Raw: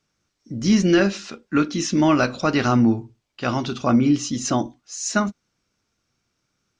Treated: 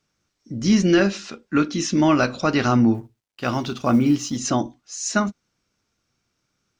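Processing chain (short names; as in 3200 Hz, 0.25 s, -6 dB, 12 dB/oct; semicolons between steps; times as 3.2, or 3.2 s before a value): 2.94–4.38 G.711 law mismatch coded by A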